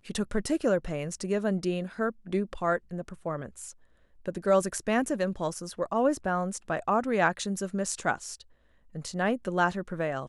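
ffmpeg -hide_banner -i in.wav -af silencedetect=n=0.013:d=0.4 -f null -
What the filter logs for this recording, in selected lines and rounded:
silence_start: 3.71
silence_end: 4.26 | silence_duration: 0.55
silence_start: 8.41
silence_end: 8.95 | silence_duration: 0.54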